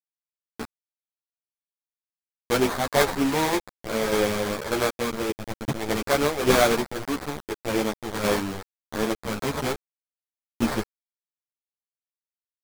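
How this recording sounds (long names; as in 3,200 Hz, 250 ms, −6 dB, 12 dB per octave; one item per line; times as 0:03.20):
aliases and images of a low sample rate 2,800 Hz, jitter 20%
tremolo saw down 1.7 Hz, depth 55%
a quantiser's noise floor 6 bits, dither none
a shimmering, thickened sound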